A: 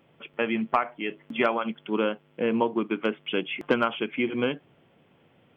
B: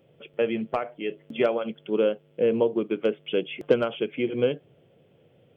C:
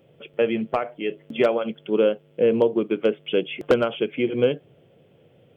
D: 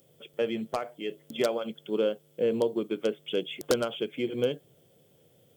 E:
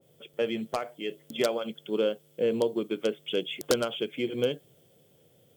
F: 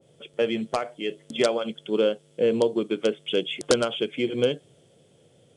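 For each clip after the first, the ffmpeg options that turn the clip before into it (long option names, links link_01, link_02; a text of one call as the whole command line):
ffmpeg -i in.wav -af "equalizer=frequency=125:width_type=o:width=1:gain=5,equalizer=frequency=250:width_type=o:width=1:gain=-5,equalizer=frequency=500:width_type=o:width=1:gain=9,equalizer=frequency=1000:width_type=o:width=1:gain=-11,equalizer=frequency=2000:width_type=o:width=1:gain=-5" out.wav
ffmpeg -i in.wav -af "aeval=exprs='0.266*(abs(mod(val(0)/0.266+3,4)-2)-1)':channel_layout=same,volume=3.5dB" out.wav
ffmpeg -i in.wav -af "aexciter=amount=12.8:drive=2.8:freq=4000,volume=-7.5dB" out.wav
ffmpeg -i in.wav -af "adynamicequalizer=threshold=0.00794:dfrequency=1700:dqfactor=0.7:tfrequency=1700:tqfactor=0.7:attack=5:release=100:ratio=0.375:range=1.5:mode=boostabove:tftype=highshelf" out.wav
ffmpeg -i in.wav -af "aresample=22050,aresample=44100,volume=4.5dB" out.wav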